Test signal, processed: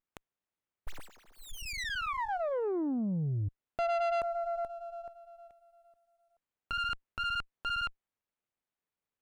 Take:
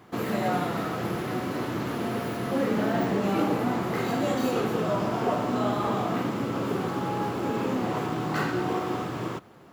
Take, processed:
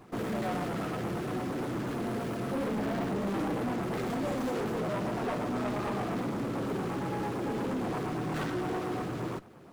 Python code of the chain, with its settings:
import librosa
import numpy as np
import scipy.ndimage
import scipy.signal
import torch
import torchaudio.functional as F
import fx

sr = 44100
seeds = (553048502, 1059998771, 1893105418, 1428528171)

y = fx.filter_lfo_notch(x, sr, shape='sine', hz=8.7, low_hz=760.0, high_hz=3400.0, q=1.4)
y = 10.0 ** (-28.0 / 20.0) * np.tanh(y / 10.0 ** (-28.0 / 20.0))
y = fx.peak_eq(y, sr, hz=9500.0, db=9.0, octaves=0.25)
y = fx.running_max(y, sr, window=9)